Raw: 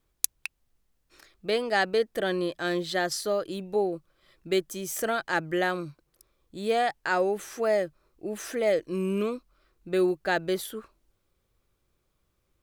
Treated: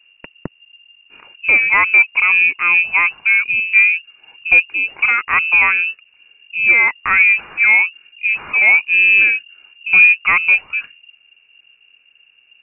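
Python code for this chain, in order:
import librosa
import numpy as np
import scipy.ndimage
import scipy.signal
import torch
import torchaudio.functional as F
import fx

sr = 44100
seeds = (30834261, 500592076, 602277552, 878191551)

p1 = fx.low_shelf(x, sr, hz=450.0, db=11.0)
p2 = 10.0 ** (-20.5 / 20.0) * np.tanh(p1 / 10.0 ** (-20.5 / 20.0))
p3 = p1 + F.gain(torch.from_numpy(p2), -6.5).numpy()
p4 = fx.freq_invert(p3, sr, carrier_hz=2800)
y = F.gain(torch.from_numpy(p4), 6.5).numpy()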